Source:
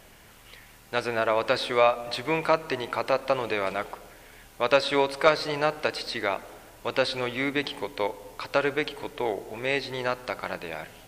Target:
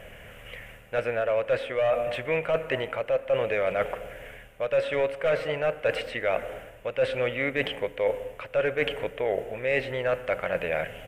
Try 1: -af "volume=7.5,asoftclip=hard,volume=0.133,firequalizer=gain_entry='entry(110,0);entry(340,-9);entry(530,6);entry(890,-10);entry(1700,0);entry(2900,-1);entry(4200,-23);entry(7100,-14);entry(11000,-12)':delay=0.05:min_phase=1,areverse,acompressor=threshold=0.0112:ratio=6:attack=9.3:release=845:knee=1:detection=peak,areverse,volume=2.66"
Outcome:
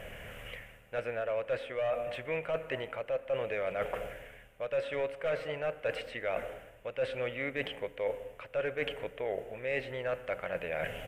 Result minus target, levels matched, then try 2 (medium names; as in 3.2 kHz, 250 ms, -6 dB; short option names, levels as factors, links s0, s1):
compression: peak gain reduction +8 dB
-af "volume=7.5,asoftclip=hard,volume=0.133,firequalizer=gain_entry='entry(110,0);entry(340,-9);entry(530,6);entry(890,-10);entry(1700,0);entry(2900,-1);entry(4200,-23);entry(7100,-14);entry(11000,-12)':delay=0.05:min_phase=1,areverse,acompressor=threshold=0.0335:ratio=6:attack=9.3:release=845:knee=1:detection=peak,areverse,volume=2.66"